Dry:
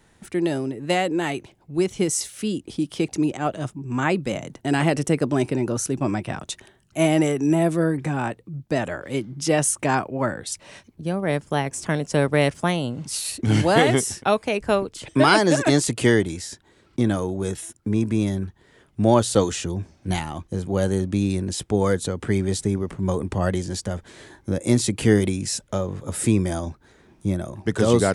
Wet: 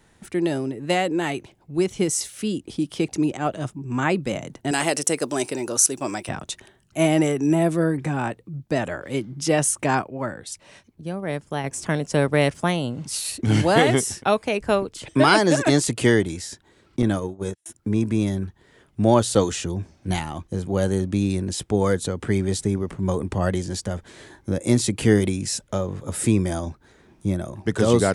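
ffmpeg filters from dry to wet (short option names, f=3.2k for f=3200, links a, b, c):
-filter_complex "[0:a]asettb=1/sr,asplit=3[a][b][c];[a]atrim=end=4.714[d];[b]atrim=start=4.71:end=6.29,asetpts=PTS-STARTPTS,afade=t=in:d=0.004:c=qsin,afade=t=out:st=1.576:d=0.004:c=qsin,bass=f=250:g=-14,treble=f=4k:g=12[e];[c]atrim=start=6.286[f];[d][e]acrossfade=d=0.004:c1=hsin:c2=qsin[g];[g][f]acrossfade=d=0.004:c1=qsin:c2=hsin,asettb=1/sr,asplit=3[h][i][j];[h]atrim=end=17.024[k];[i]atrim=start=17.02:end=17.66,asetpts=PTS-STARTPTS,afade=t=in:d=0.004:c=qsin,afade=t=out:st=0.636:d=0.004:c=qsin,agate=range=-41dB:threshold=-26dB:ratio=16:release=100:detection=peak[l];[j]atrim=start=17.656[m];[k][l]acrossfade=d=0.004:c1=hsin:c2=qsin[n];[n][m]acrossfade=d=0.004:c1=qsin:c2=hsin,asplit=3[o][p][q];[o]atrim=end=10.022[r];[p]atrim=start=10.018:end=11.642,asetpts=PTS-STARTPTS,volume=-4.5dB[s];[q]atrim=start=11.638[t];[r][s]acrossfade=d=0.004:c1=hsin:c2=hsin[u];[u][t]acrossfade=d=0.004:c1=hsin:c2=hsin"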